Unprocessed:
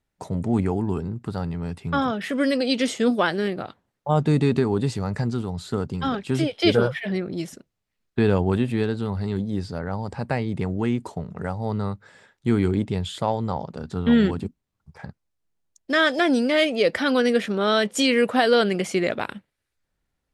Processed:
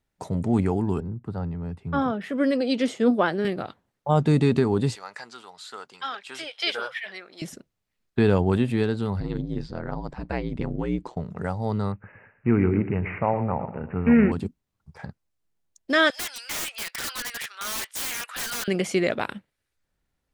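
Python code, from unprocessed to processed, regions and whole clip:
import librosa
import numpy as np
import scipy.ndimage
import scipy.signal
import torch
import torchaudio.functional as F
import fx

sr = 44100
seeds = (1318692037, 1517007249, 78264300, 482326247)

y = fx.chain(x, sr, fx.high_shelf(hz=2200.0, db=-10.5),
    fx.band_widen(depth_pct=40), at=(1.0, 3.45))
y = fx.chain(y, sr, fx.highpass(hz=1100.0, slope=12),
    fx.high_shelf(hz=10000.0, db=-9.0), at=(4.95, 7.42))
y = fx.chain(y, sr, fx.lowpass(hz=4900.0, slope=12),
    fx.ring_mod(carrier_hz=61.0), at=(9.2, 11.17))
y = fx.chain(y, sr, fx.block_float(bits=7),
    fx.echo_feedback(ms=115, feedback_pct=36, wet_db=-12),
    fx.resample_bad(factor=8, down='none', up='filtered'), at=(11.92, 14.32))
y = fx.chain(y, sr, fx.highpass(hz=1300.0, slope=24),
    fx.overflow_wrap(gain_db=25.0), at=(16.1, 18.68))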